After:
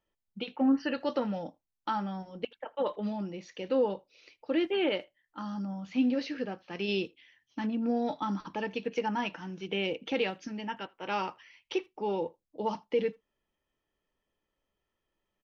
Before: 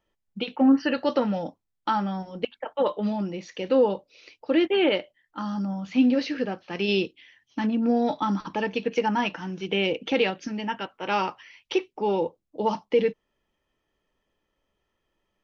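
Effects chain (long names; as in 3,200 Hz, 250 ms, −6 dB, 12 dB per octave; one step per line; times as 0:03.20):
far-end echo of a speakerphone 80 ms, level −26 dB
level −7 dB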